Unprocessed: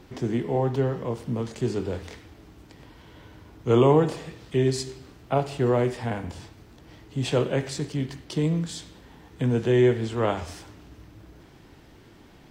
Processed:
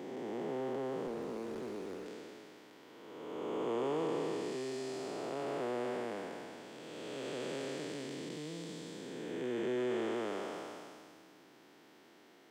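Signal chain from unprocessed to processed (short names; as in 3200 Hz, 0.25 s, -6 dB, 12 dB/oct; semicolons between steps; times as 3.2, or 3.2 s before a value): time blur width 0.789 s; in parallel at -4 dB: soft clip -26 dBFS, distortion -13 dB; on the sum: Bessel high-pass 310 Hz, order 4; 1.07–2.06 running maximum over 9 samples; gain -8 dB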